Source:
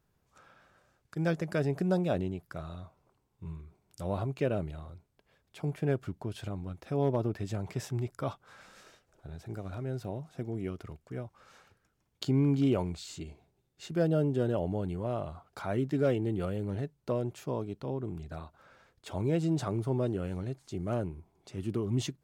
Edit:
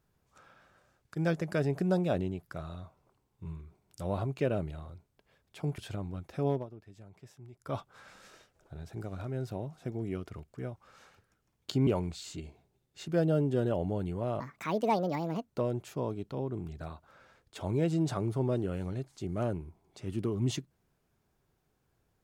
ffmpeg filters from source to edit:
-filter_complex "[0:a]asplit=7[s0][s1][s2][s3][s4][s5][s6];[s0]atrim=end=5.782[s7];[s1]atrim=start=6.308:end=7.2,asetpts=PTS-STARTPTS,afade=t=out:st=0.692:d=0.2:silence=0.133352[s8];[s2]atrim=start=7.2:end=8.09,asetpts=PTS-STARTPTS,volume=0.133[s9];[s3]atrim=start=8.09:end=12.402,asetpts=PTS-STARTPTS,afade=t=in:d=0.2:silence=0.133352[s10];[s4]atrim=start=12.698:end=15.234[s11];[s5]atrim=start=15.23:end=17,asetpts=PTS-STARTPTS,asetrate=71442,aresample=44100,atrim=end_sample=48183,asetpts=PTS-STARTPTS[s12];[s6]atrim=start=16.996[s13];[s8][s9][s10]concat=n=3:v=0:a=1[s14];[s7][s14]acrossfade=d=0.004:c1=hsin:c2=hsin[s15];[s15][s11]acrossfade=d=0.004:c1=hsin:c2=hsin[s16];[s16][s12]acrossfade=d=0.004:c1=hsin:c2=hsin[s17];[s17][s13]acrossfade=d=0.004:c1=hsin:c2=hsin"

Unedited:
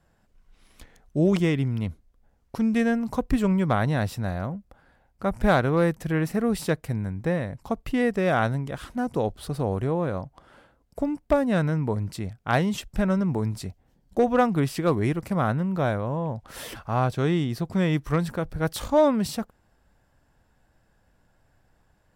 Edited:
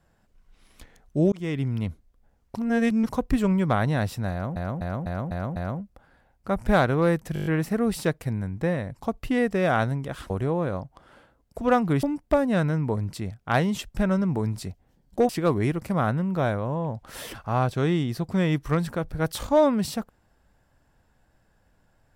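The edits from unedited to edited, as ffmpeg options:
-filter_complex "[0:a]asplit=19[s0][s1][s2][s3][s4][s5][s6][s7][s8][s9][s10][s11][s12][s13][s14][s15][s16][s17][s18];[s0]atrim=end=1.32,asetpts=PTS-STARTPTS,afade=t=out:st=1.316:d=0.004:c=hsin[s19];[s1]atrim=start=1.32:end=2.562,asetpts=PTS-STARTPTS,afade=t=in:d=0.5:c=qsin[s20];[s2]atrim=start=2.558:end=3.092,asetpts=PTS-STARTPTS,areverse[s21];[s3]atrim=start=3.088:end=4.562[s22];[s4]atrim=start=4.308:end=4.562[s23];[s5]atrim=start=4.308:end=4.562[s24];[s6]atrim=start=4.308:end=4.562[s25];[s7]atrim=start=4.308:end=4.562[s26];[s8]atrim=start=4.308:end=6.112[s27];[s9]atrim=start=6.088:end=6.112[s28];[s10]atrim=start=6.088:end=6.112[s29];[s11]atrim=start=6.088:end=6.112[s30];[s12]atrim=start=6.088:end=6.112[s31];[s13]atrim=start=6.088:end=6.112[s32];[s14]atrim=start=6.088:end=8.932[s33];[s15]atrim=start=9.708:end=11.022[s34];[s16]atrim=start=14.278:end=14.702[s35];[s17]atrim=start=11.018:end=14.282[s36];[s18]atrim=start=14.698[s37];[s19][s20]concat=n=2:v=0:a=1[s38];[s38][s21]acrossfade=d=0.004:c1=hsin:c2=hsin[s39];[s39][s22]acrossfade=d=0.004:c1=hsin:c2=hsin[s40];[s40][s23]acrossfade=d=0.004:c1=hsin:c2=hsin[s41];[s41][s24]acrossfade=d=0.004:c1=hsin:c2=hsin[s42];[s42][s25]acrossfade=d=0.004:c1=hsin:c2=hsin[s43];[s43][s26]acrossfade=d=0.004:c1=hsin:c2=hsin[s44];[s44][s27]acrossfade=d=0.004:c1=hsin:c2=hsin[s45];[s45][s28]acrossfade=d=0.004:c1=hsin:c2=hsin[s46];[s46][s29]acrossfade=d=0.004:c1=hsin:c2=hsin[s47];[s47][s30]acrossfade=d=0.004:c1=hsin:c2=hsin[s48];[s48][s31]acrossfade=d=0.004:c1=hsin:c2=hsin[s49];[s49][s32]acrossfade=d=0.004:c1=hsin:c2=hsin[s50];[s50][s33]acrossfade=d=0.004:c1=hsin:c2=hsin[s51];[s51][s34]acrossfade=d=0.004:c1=hsin:c2=hsin[s52];[s52][s35]acrossfade=d=0.004:c1=hsin:c2=hsin[s53];[s53][s36]acrossfade=d=0.004:c1=hsin:c2=hsin[s54];[s54][s37]acrossfade=d=0.004:c1=hsin:c2=hsin"

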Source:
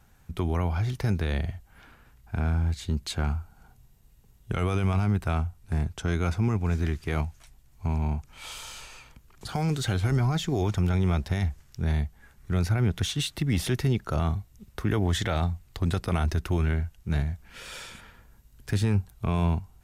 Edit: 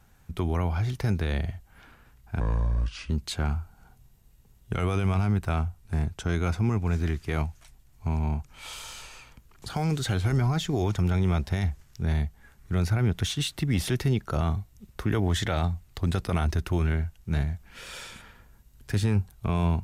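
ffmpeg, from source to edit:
-filter_complex "[0:a]asplit=3[s0][s1][s2];[s0]atrim=end=2.404[s3];[s1]atrim=start=2.4:end=2.89,asetpts=PTS-STARTPTS,asetrate=30870,aresample=44100,atrim=end_sample=30870,asetpts=PTS-STARTPTS[s4];[s2]atrim=start=2.886[s5];[s3][s4]acrossfade=d=0.004:c1=hsin:c2=hsin[s6];[s6][s5]acrossfade=d=0.004:c1=hsin:c2=hsin"

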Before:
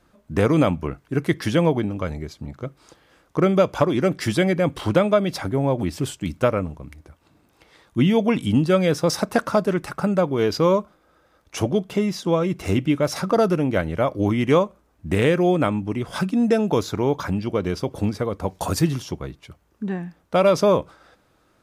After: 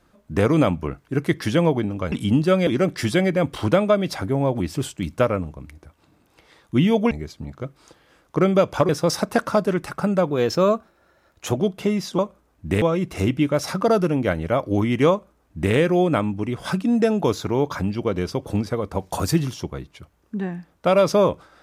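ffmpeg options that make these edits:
-filter_complex "[0:a]asplit=9[s0][s1][s2][s3][s4][s5][s6][s7][s8];[s0]atrim=end=2.122[s9];[s1]atrim=start=8.338:end=8.892[s10];[s2]atrim=start=3.898:end=8.342[s11];[s3]atrim=start=2.118:end=3.902[s12];[s4]atrim=start=8.888:end=10.304[s13];[s5]atrim=start=10.3:end=11.68,asetpts=PTS-STARTPTS,asetrate=48069,aresample=44100,atrim=end_sample=55833,asetpts=PTS-STARTPTS[s14];[s6]atrim=start=11.676:end=12.302[s15];[s7]atrim=start=14.588:end=15.222[s16];[s8]atrim=start=12.298[s17];[s9][s10]acrossfade=d=0.004:c1=hsin:c2=hsin[s18];[s18][s11]acrossfade=d=0.004:c1=hsin:c2=hsin[s19];[s19][s12]acrossfade=d=0.004:c1=hsin:c2=hsin[s20];[s20][s13]acrossfade=d=0.004:c1=hsin:c2=hsin[s21];[s21][s14]acrossfade=d=0.004:c1=hsin:c2=hsin[s22];[s22][s15]acrossfade=d=0.004:c1=hsin:c2=hsin[s23];[s23][s16]acrossfade=d=0.004:c1=hsin:c2=hsin[s24];[s24][s17]acrossfade=d=0.004:c1=hsin:c2=hsin"

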